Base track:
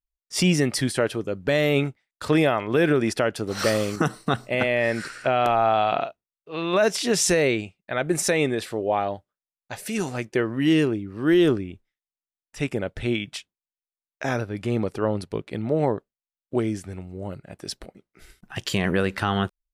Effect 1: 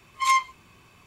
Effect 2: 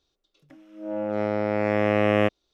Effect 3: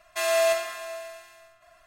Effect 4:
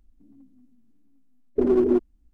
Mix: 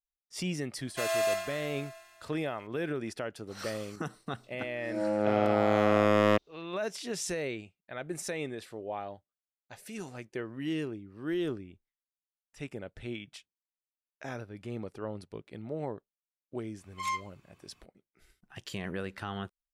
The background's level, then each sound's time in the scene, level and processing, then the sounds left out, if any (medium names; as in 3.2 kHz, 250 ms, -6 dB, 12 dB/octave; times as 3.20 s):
base track -14 dB
0.81 s: add 3 -6.5 dB
4.09 s: add 2 -1 dB + overload inside the chain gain 15 dB
16.78 s: add 1 -12.5 dB
not used: 4